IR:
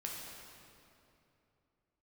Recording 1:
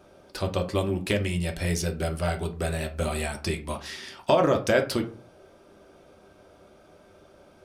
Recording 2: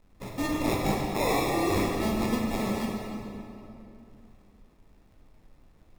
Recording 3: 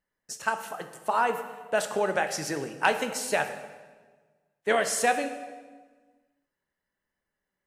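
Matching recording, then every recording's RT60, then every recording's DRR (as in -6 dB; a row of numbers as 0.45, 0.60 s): 2; 0.40, 2.8, 1.4 s; 3.0, -2.5, 7.5 dB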